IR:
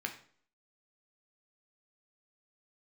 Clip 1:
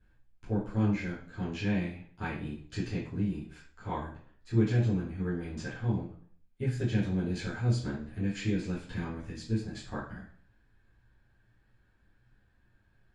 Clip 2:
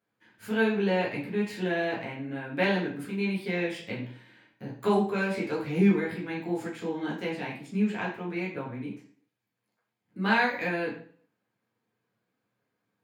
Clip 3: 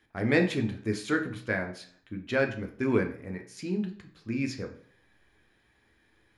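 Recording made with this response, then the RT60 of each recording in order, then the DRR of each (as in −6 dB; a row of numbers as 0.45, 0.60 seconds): 3; 0.50, 0.50, 0.50 seconds; −11.5, −6.0, 3.5 decibels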